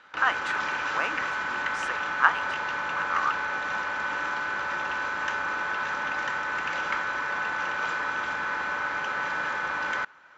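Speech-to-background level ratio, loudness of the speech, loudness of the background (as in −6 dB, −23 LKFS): −1.0 dB, −29.5 LKFS, −28.5 LKFS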